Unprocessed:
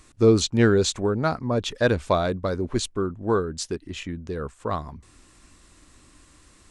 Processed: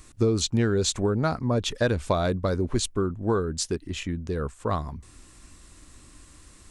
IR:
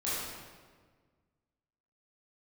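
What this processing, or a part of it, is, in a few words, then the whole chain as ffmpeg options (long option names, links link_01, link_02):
ASMR close-microphone chain: -af "lowshelf=frequency=160:gain=5.5,acompressor=threshold=-19dB:ratio=6,highshelf=frequency=8000:gain=7.5"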